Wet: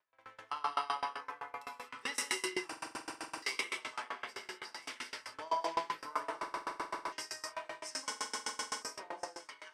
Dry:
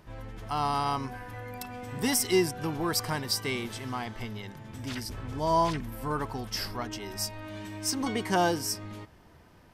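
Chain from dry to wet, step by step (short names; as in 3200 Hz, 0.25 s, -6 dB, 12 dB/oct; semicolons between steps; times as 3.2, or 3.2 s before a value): three-band isolator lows -13 dB, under 320 Hz, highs -16 dB, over 2400 Hz; notch 740 Hz, Q 12; on a send: echo with dull and thin repeats by turns 0.668 s, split 1100 Hz, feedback 69%, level -8 dB; on the sum: non-linear reverb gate 0.28 s flat, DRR -3.5 dB; gate with hold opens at -34 dBFS; reverse; upward compressor, threshold -45 dBFS; reverse; weighting filter ITU-R 468; stuck buffer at 2.68/6.38/8.08, samples 2048, times 15; dB-ramp tremolo decaying 7.8 Hz, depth 26 dB; gain -2 dB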